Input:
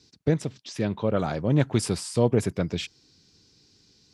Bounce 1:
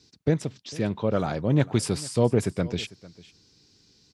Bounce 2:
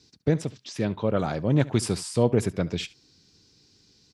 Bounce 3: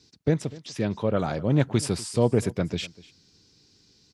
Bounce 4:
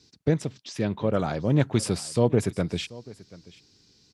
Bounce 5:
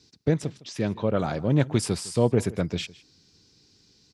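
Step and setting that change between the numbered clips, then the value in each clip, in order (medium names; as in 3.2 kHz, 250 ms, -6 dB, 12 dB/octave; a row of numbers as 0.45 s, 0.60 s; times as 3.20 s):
delay, time: 449 ms, 71 ms, 246 ms, 735 ms, 158 ms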